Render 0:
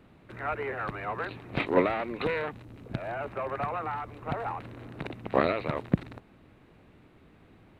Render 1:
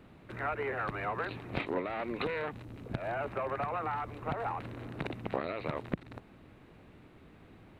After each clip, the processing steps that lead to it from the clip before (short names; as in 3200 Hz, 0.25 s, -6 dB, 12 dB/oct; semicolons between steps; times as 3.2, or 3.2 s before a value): compressor 12:1, threshold -31 dBFS, peak gain reduction 15 dB; gain +1 dB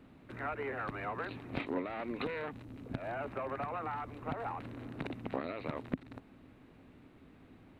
bell 260 Hz +8 dB 0.3 oct; gain -4 dB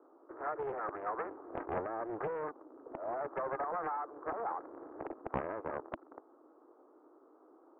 Chebyshev band-pass 320–1300 Hz, order 4; Doppler distortion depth 0.83 ms; gain +3 dB